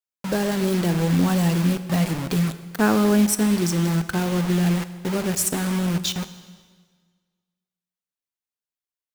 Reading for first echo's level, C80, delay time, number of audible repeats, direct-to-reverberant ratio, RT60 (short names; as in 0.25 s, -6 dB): none, 14.0 dB, none, none, 11.5 dB, 1.6 s